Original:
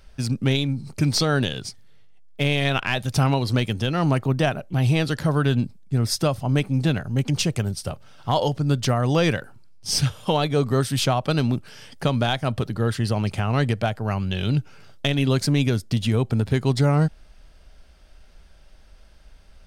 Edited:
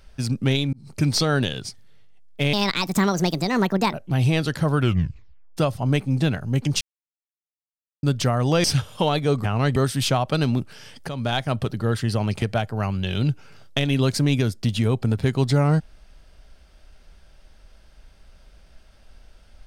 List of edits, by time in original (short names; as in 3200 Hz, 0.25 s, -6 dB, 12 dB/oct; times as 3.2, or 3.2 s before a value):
0.73–0.99 fade in
2.53–4.56 speed 145%
5.4 tape stop 0.80 s
7.44–8.66 mute
9.27–9.92 cut
12.05–12.34 fade in, from -12.5 dB
13.38–13.7 move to 10.72